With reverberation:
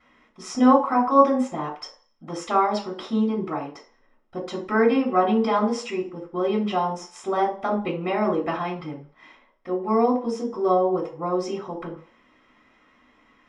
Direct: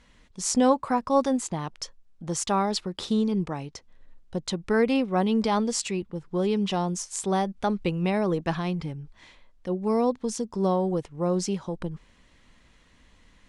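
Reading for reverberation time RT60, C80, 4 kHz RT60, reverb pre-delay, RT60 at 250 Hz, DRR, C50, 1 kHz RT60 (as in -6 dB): 0.45 s, 14.0 dB, 0.45 s, 3 ms, 0.35 s, -14.0 dB, 9.0 dB, 0.45 s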